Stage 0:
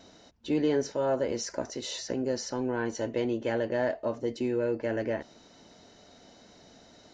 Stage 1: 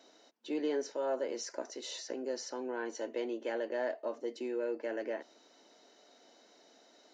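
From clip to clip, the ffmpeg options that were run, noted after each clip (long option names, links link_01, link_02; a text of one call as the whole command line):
ffmpeg -i in.wav -af "highpass=frequency=290:width=0.5412,highpass=frequency=290:width=1.3066,volume=-6dB" out.wav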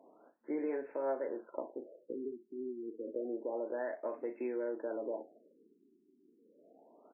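ffmpeg -i in.wav -filter_complex "[0:a]acompressor=threshold=-37dB:ratio=3,asplit=2[link_01][link_02];[link_02]aecho=0:1:37|59:0.316|0.168[link_03];[link_01][link_03]amix=inputs=2:normalize=0,afftfilt=real='re*lt(b*sr/1024,390*pow(2700/390,0.5+0.5*sin(2*PI*0.29*pts/sr)))':imag='im*lt(b*sr/1024,390*pow(2700/390,0.5+0.5*sin(2*PI*0.29*pts/sr)))':win_size=1024:overlap=0.75,volume=2dB" out.wav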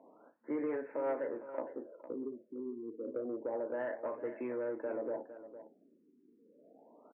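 ffmpeg -i in.wav -af "asoftclip=type=tanh:threshold=-28.5dB,highpass=110,equalizer=frequency=120:width_type=q:width=4:gain=9,equalizer=frequency=370:width_type=q:width=4:gain=-6,equalizer=frequency=700:width_type=q:width=4:gain=-4,lowpass=frequency=2400:width=0.5412,lowpass=frequency=2400:width=1.3066,aecho=1:1:457:0.224,volume=3.5dB" out.wav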